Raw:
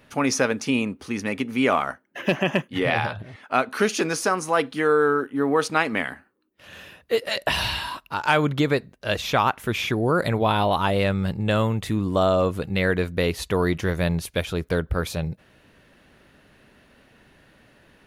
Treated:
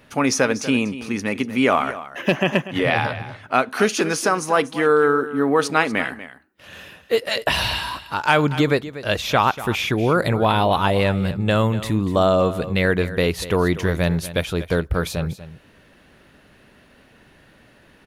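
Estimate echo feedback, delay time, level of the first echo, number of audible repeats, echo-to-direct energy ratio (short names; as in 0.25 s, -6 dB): no steady repeat, 0.241 s, -14.5 dB, 1, -14.5 dB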